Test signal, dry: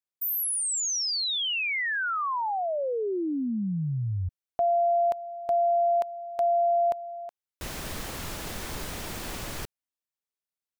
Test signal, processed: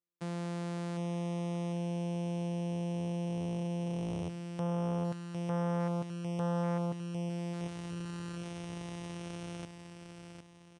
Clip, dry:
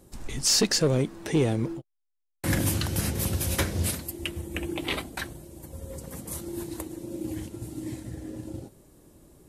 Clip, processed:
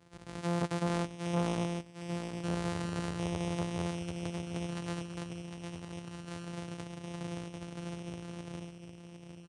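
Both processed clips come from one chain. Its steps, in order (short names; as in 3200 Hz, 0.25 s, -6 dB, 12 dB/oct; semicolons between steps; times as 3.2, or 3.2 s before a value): sample sorter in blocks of 256 samples; HPF 100 Hz 12 dB/oct; feedback echo 0.755 s, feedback 40%, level -8 dB; downsampling 22050 Hz; core saturation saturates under 640 Hz; gain -7 dB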